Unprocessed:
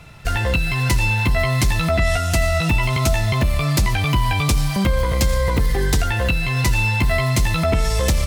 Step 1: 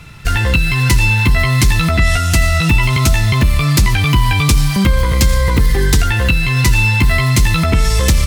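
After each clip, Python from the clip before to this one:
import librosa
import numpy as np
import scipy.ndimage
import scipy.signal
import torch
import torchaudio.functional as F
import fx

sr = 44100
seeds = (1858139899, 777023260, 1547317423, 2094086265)

y = fx.peak_eq(x, sr, hz=650.0, db=-9.5, octaves=0.79)
y = y * librosa.db_to_amplitude(6.5)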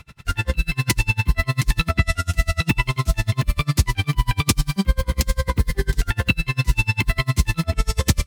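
y = x * 10.0 ** (-34 * (0.5 - 0.5 * np.cos(2.0 * np.pi * 10.0 * np.arange(len(x)) / sr)) / 20.0)
y = y * librosa.db_to_amplitude(-2.0)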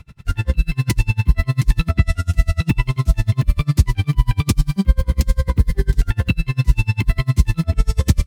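y = fx.low_shelf(x, sr, hz=400.0, db=10.5)
y = y * librosa.db_to_amplitude(-5.5)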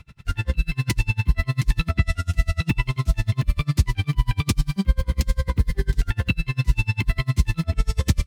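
y = fx.peak_eq(x, sr, hz=2800.0, db=4.5, octaves=2.6)
y = y * librosa.db_to_amplitude(-5.0)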